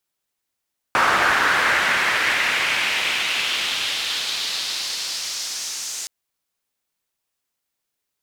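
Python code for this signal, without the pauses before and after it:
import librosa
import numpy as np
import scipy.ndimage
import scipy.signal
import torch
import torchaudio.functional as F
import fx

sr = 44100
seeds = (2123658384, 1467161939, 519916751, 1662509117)

y = fx.riser_noise(sr, seeds[0], length_s=5.12, colour='pink', kind='bandpass', start_hz=1300.0, end_hz=6600.0, q=2.1, swell_db=-12.5, law='exponential')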